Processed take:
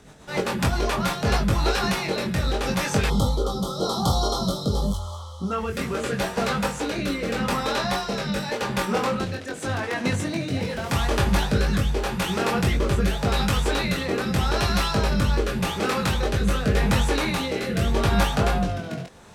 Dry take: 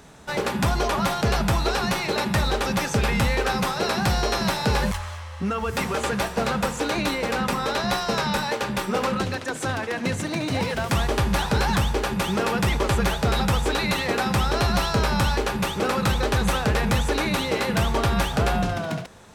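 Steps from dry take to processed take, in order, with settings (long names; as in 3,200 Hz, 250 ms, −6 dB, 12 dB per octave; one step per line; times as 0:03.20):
rotating-speaker cabinet horn 7.5 Hz, later 0.85 Hz, at 0:00.74
chorus effect 0.6 Hz, delay 20 ms, depth 2.8 ms
gain on a spectral selection 0:03.09–0:05.52, 1,400–3,000 Hz −29 dB
level +4.5 dB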